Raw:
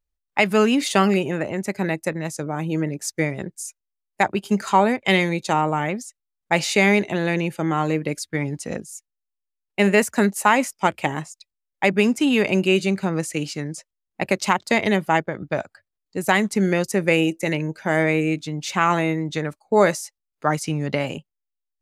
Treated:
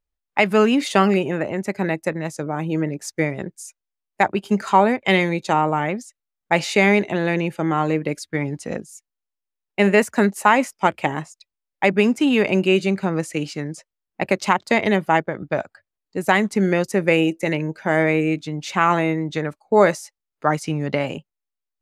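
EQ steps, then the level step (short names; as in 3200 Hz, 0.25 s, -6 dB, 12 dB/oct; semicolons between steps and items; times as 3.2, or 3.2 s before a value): low shelf 160 Hz -4.5 dB; high shelf 3900 Hz -8.5 dB; +2.5 dB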